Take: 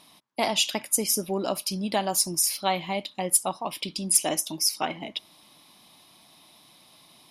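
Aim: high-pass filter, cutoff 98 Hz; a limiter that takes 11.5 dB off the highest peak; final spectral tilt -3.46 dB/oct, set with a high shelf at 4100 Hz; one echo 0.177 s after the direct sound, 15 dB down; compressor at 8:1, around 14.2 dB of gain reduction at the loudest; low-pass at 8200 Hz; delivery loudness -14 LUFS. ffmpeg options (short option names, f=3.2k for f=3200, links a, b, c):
-af "highpass=98,lowpass=8.2k,highshelf=f=4.1k:g=-7.5,acompressor=threshold=-36dB:ratio=8,alimiter=level_in=9.5dB:limit=-24dB:level=0:latency=1,volume=-9.5dB,aecho=1:1:177:0.178,volume=29.5dB"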